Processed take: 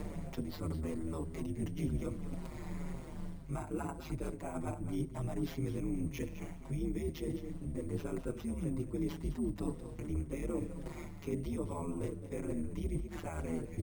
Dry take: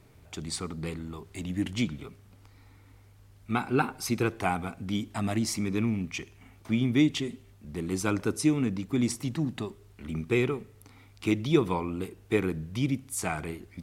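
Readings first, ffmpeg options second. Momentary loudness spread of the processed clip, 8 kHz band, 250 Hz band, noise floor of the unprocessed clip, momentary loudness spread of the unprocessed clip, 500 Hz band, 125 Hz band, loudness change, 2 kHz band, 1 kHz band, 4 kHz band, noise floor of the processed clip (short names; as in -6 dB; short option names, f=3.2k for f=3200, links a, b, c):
7 LU, -15.5 dB, -9.5 dB, -56 dBFS, 13 LU, -8.5 dB, -6.5 dB, -10.0 dB, -17.0 dB, -13.0 dB, -17.5 dB, -47 dBFS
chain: -filter_complex "[0:a]highpass=f=67:w=0.5412,highpass=f=67:w=1.3066,aeval=exprs='val(0)*sin(2*PI*79*n/s)':c=same,equalizer=f=200:t=o:w=0.33:g=-5,equalizer=f=630:t=o:w=0.33:g=7,equalizer=f=1k:t=o:w=0.33:g=5,equalizer=f=2k:t=o:w=0.33:g=4,asplit=2[a][b];[b]acompressor=mode=upward:threshold=-32dB:ratio=2.5,volume=0dB[c];[a][c]amix=inputs=2:normalize=0,alimiter=limit=-14.5dB:level=0:latency=1:release=55,areverse,acompressor=threshold=-37dB:ratio=10,areverse,tiltshelf=f=670:g=7.5,acrusher=samples=5:mix=1:aa=0.000001,aeval=exprs='val(0)+0.00398*(sin(2*PI*50*n/s)+sin(2*PI*2*50*n/s)/2+sin(2*PI*3*50*n/s)/3+sin(2*PI*4*50*n/s)/4+sin(2*PI*5*50*n/s)/5)':c=same,aecho=1:1:210:0.266,asplit=2[d][e];[e]adelay=6.2,afreqshift=-1.9[f];[d][f]amix=inputs=2:normalize=1,volume=2dB"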